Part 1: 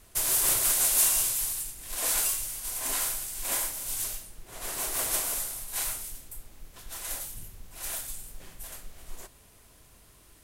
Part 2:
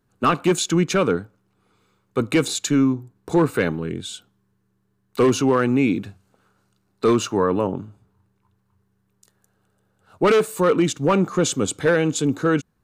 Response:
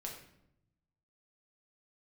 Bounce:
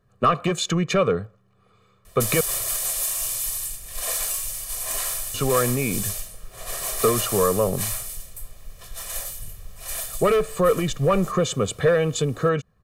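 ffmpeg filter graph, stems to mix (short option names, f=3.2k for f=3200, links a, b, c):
-filter_complex "[0:a]acompressor=threshold=-27dB:ratio=6,adelay=2050,volume=2.5dB[a];[1:a]highshelf=f=4.2k:g=-9.5,acompressor=threshold=-20dB:ratio=6,volume=3dB,asplit=3[b][c][d];[b]atrim=end=2.41,asetpts=PTS-STARTPTS,afade=t=out:st=2.406:d=0.004:c=hsin[e];[c]atrim=start=2.41:end=5.34,asetpts=PTS-STARTPTS,volume=0[f];[d]atrim=start=5.34,asetpts=PTS-STARTPTS,afade=t=in:d=0.004:c=hsin[g];[e][f][g]concat=n=3:v=0:a=1[h];[a][h]amix=inputs=2:normalize=0,aecho=1:1:1.7:0.75"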